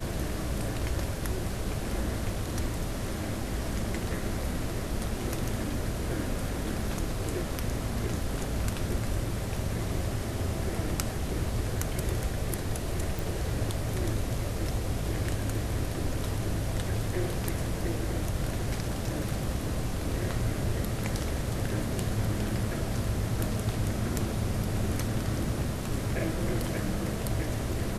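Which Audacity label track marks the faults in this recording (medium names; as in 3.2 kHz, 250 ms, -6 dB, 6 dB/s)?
13.190000	13.190000	pop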